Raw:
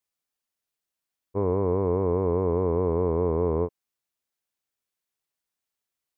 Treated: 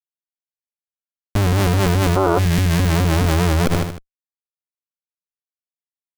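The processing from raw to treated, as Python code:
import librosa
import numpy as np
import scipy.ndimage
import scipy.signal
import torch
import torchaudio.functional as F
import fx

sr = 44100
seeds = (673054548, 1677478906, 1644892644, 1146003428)

p1 = fx.bass_treble(x, sr, bass_db=15, treble_db=-11)
p2 = 10.0 ** (-26.0 / 20.0) * (np.abs((p1 / 10.0 ** (-26.0 / 20.0) + 3.0) % 4.0 - 2.0) - 1.0)
p3 = p1 + (p2 * 10.0 ** (-5.0 / 20.0))
p4 = fx.high_shelf(p3, sr, hz=2000.0, db=11.5)
p5 = fx.schmitt(p4, sr, flips_db=-19.5)
p6 = fx.spec_box(p5, sr, start_s=2.17, length_s=0.22, low_hz=280.0, high_hz=1500.0, gain_db=12)
p7 = p6 + fx.echo_feedback(p6, sr, ms=77, feedback_pct=43, wet_db=-18, dry=0)
p8 = fx.dereverb_blind(p7, sr, rt60_s=1.9)
y = fx.env_flatten(p8, sr, amount_pct=100)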